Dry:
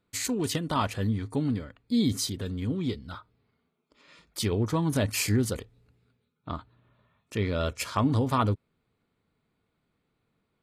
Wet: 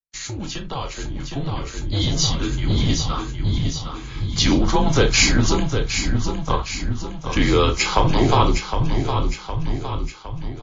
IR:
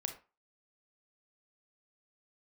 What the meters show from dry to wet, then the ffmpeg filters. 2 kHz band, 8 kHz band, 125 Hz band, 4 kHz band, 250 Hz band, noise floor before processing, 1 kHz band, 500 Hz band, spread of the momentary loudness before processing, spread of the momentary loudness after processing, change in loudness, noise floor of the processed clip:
+13.0 dB, +10.5 dB, +8.5 dB, +13.5 dB, +6.0 dB, −78 dBFS, +10.0 dB, +9.0 dB, 14 LU, 13 LU, +7.5 dB, −35 dBFS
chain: -filter_complex "[0:a]acrossover=split=470|3000[link_01][link_02][link_03];[link_02]acompressor=threshold=-30dB:ratio=6[link_04];[link_01][link_04][link_03]amix=inputs=3:normalize=0,aecho=1:1:761|1522|2283|3044|3805|4566:0.398|0.207|0.108|0.056|0.0291|0.0151,agate=range=-33dB:threshold=-53dB:ratio=3:detection=peak[link_05];[1:a]atrim=start_sample=2205,asetrate=74970,aresample=44100[link_06];[link_05][link_06]afir=irnorm=-1:irlink=0,afreqshift=-140,acrossover=split=270[link_07][link_08];[link_07]asoftclip=type=hard:threshold=-35.5dB[link_09];[link_09][link_08]amix=inputs=2:normalize=0,dynaudnorm=framelen=580:gausssize=7:maxgain=12.5dB,bandreject=frequency=1800:width=13,volume=7.5dB" -ar 16000 -c:a libmp3lame -b:a 32k

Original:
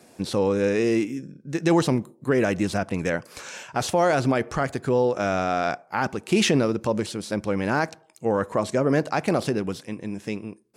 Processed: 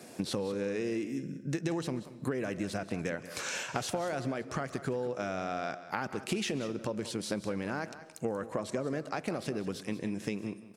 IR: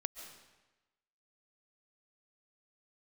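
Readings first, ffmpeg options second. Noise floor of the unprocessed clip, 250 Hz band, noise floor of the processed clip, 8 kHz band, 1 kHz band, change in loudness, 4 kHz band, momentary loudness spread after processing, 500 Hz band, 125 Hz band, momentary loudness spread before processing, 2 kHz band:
−56 dBFS, −10.5 dB, −50 dBFS, −7.0 dB, −12.0 dB, −11.0 dB, −8.5 dB, 4 LU, −11.5 dB, −10.5 dB, 11 LU, −10.0 dB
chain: -filter_complex "[0:a]highpass=93,equalizer=frequency=910:width_type=o:width=0.52:gain=-3,acompressor=threshold=-33dB:ratio=16,aecho=1:1:186:0.2,asplit=2[link_01][link_02];[1:a]atrim=start_sample=2205[link_03];[link_02][link_03]afir=irnorm=-1:irlink=0,volume=-6dB[link_04];[link_01][link_04]amix=inputs=2:normalize=0"

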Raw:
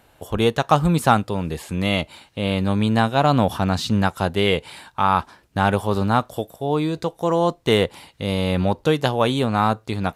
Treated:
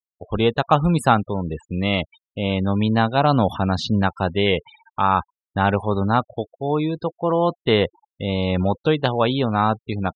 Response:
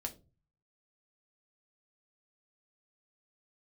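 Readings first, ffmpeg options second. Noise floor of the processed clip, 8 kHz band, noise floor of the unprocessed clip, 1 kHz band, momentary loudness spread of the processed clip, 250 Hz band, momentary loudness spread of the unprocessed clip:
below −85 dBFS, can't be measured, −57 dBFS, 0.0 dB, 9 LU, 0.0 dB, 9 LU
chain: -af "afftfilt=real='re*gte(hypot(re,im),0.0355)':imag='im*gte(hypot(re,im),0.0355)':win_size=1024:overlap=0.75"

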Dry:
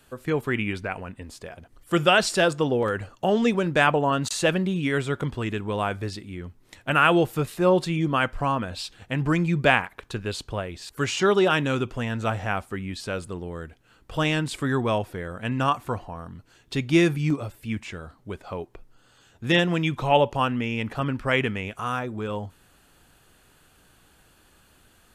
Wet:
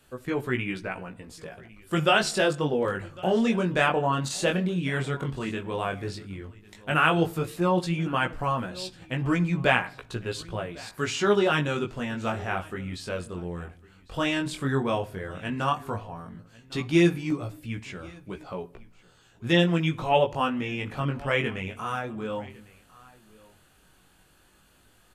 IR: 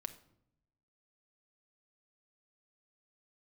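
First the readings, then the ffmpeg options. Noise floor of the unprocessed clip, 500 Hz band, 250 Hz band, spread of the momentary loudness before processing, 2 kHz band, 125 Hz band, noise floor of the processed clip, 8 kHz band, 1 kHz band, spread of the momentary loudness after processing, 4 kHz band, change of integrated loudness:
−59 dBFS, −2.5 dB, −2.0 dB, 16 LU, −2.5 dB, −2.0 dB, −60 dBFS, −2.5 dB, −2.5 dB, 17 LU, −2.5 dB, −2.5 dB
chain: -filter_complex "[0:a]aecho=1:1:1102:0.075,asplit=2[link_01][link_02];[1:a]atrim=start_sample=2205[link_03];[link_02][link_03]afir=irnorm=-1:irlink=0,volume=-0.5dB[link_04];[link_01][link_04]amix=inputs=2:normalize=0,flanger=delay=16:depth=6.9:speed=0.11,volume=-4dB"

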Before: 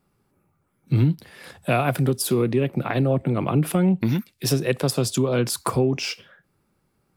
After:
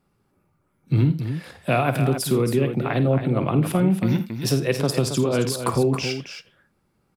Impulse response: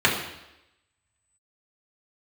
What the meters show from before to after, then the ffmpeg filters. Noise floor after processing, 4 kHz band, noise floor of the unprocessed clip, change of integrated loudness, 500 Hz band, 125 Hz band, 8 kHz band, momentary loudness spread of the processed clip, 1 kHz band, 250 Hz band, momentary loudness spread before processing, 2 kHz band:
−69 dBFS, 0.0 dB, −70 dBFS, +0.5 dB, +1.0 dB, +1.0 dB, −2.0 dB, 7 LU, +1.0 dB, +0.5 dB, 5 LU, +0.5 dB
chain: -filter_complex "[0:a]highshelf=frequency=9300:gain=-6,asplit=2[link_01][link_02];[link_02]aecho=0:1:52|83|273:0.251|0.15|0.355[link_03];[link_01][link_03]amix=inputs=2:normalize=0"

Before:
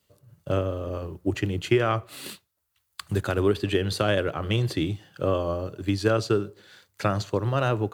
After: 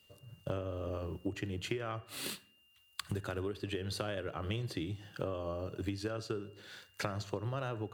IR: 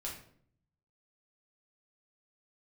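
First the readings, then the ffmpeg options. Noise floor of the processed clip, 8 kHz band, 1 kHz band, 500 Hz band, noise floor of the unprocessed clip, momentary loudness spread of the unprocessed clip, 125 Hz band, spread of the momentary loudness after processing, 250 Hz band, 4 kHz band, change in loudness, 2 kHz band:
−68 dBFS, −6.5 dB, −13.0 dB, −13.5 dB, −75 dBFS, 9 LU, −12.5 dB, 7 LU, −12.5 dB, −9.5 dB, −13.0 dB, −12.0 dB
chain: -filter_complex "[0:a]acompressor=threshold=-34dB:ratio=12,aeval=exprs='val(0)+0.000562*sin(2*PI*2800*n/s)':channel_layout=same,asplit=2[link_01][link_02];[link_02]equalizer=frequency=1700:width_type=o:width=0.37:gain=11[link_03];[1:a]atrim=start_sample=2205,asetrate=48510,aresample=44100,adelay=53[link_04];[link_03][link_04]afir=irnorm=-1:irlink=0,volume=-20.5dB[link_05];[link_01][link_05]amix=inputs=2:normalize=0"

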